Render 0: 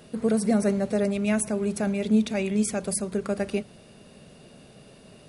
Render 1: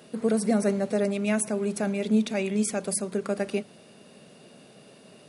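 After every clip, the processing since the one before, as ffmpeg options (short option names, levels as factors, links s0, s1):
-af "highpass=180"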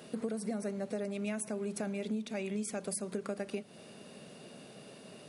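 -af "acompressor=threshold=0.02:ratio=6"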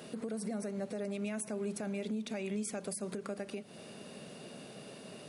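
-af "alimiter=level_in=2.37:limit=0.0631:level=0:latency=1:release=146,volume=0.422,volume=1.33"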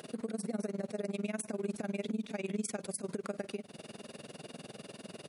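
-af "tremolo=f=20:d=0.947,volume=1.68"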